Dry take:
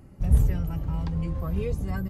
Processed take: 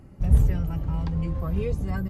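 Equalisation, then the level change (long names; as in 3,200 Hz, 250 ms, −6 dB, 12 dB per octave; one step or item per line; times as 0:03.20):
high-shelf EQ 7,700 Hz −6.5 dB
+1.5 dB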